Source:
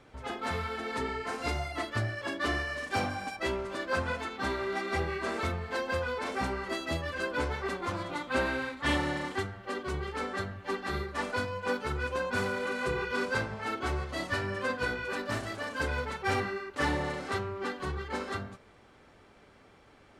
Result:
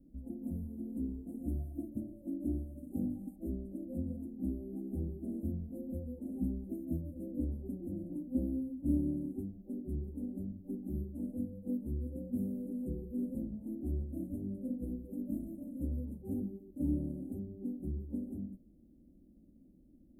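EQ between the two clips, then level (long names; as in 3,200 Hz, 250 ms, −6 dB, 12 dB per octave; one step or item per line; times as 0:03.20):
inverse Chebyshev band-stop filter 1,000–5,600 Hz, stop band 60 dB
high-shelf EQ 9,700 Hz −5.5 dB
phaser with its sweep stopped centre 420 Hz, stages 6
+4.5 dB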